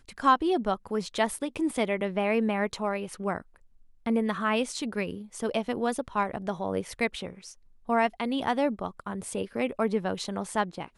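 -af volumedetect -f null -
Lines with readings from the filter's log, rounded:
mean_volume: -29.4 dB
max_volume: -10.2 dB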